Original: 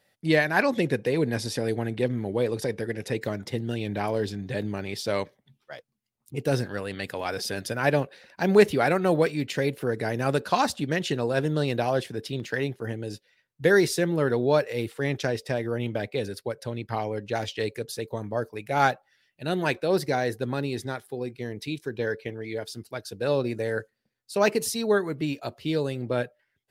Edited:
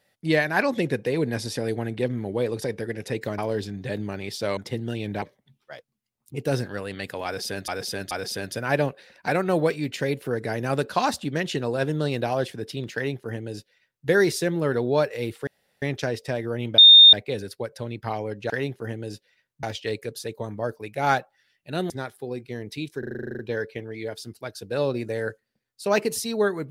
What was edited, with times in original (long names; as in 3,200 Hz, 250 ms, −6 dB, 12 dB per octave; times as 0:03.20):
0:03.38–0:04.03: move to 0:05.22
0:07.25–0:07.68: repeat, 3 plays
0:08.42–0:08.84: remove
0:12.50–0:13.63: duplicate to 0:17.36
0:15.03: splice in room tone 0.35 s
0:15.99: insert tone 3,650 Hz −6.5 dBFS 0.35 s
0:19.63–0:20.80: remove
0:21.89: stutter 0.04 s, 11 plays